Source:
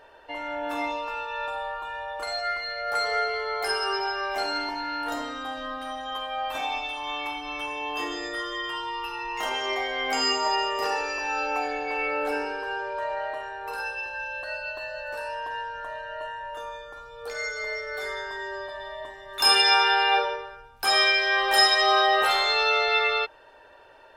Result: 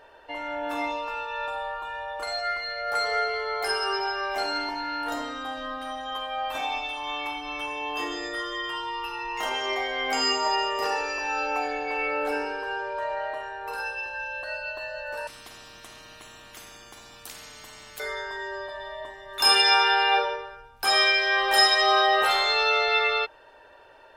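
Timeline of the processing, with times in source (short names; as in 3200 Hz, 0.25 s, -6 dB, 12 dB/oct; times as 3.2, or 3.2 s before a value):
15.27–18 spectral compressor 10:1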